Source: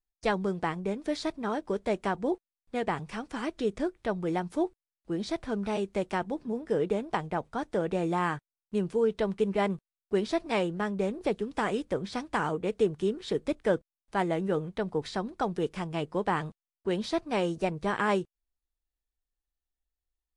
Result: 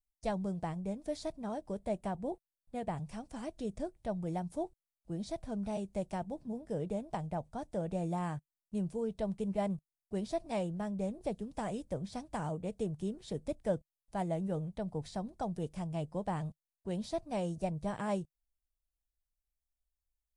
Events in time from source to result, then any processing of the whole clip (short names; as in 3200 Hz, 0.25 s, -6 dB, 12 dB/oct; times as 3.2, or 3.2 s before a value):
1.74–2.98 bell 5700 Hz -5 dB
whole clip: EQ curve 150 Hz 0 dB, 410 Hz -14 dB, 630 Hz -3 dB, 1300 Hz -17 dB, 3300 Hz -13 dB, 9300 Hz -2 dB